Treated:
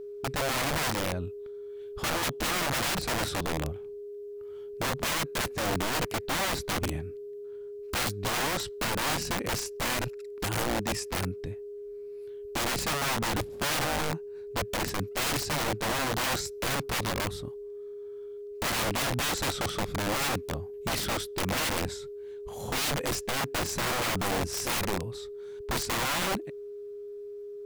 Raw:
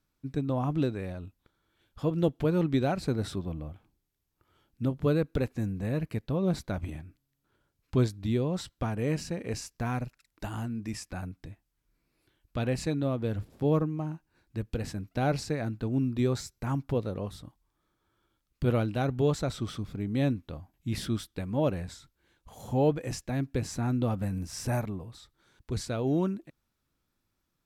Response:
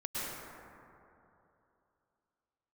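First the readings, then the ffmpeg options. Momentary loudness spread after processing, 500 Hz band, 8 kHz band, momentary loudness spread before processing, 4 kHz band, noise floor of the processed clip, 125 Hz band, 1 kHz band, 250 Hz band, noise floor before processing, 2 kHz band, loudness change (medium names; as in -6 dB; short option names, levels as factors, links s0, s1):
14 LU, -0.5 dB, +13.0 dB, 13 LU, +13.5 dB, -41 dBFS, -6.0 dB, +7.5 dB, -5.5 dB, -80 dBFS, +12.5 dB, +1.0 dB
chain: -af "aeval=exprs='val(0)+0.00631*sin(2*PI*410*n/s)':c=same,aeval=exprs='(mod(31.6*val(0)+1,2)-1)/31.6':c=same,volume=2"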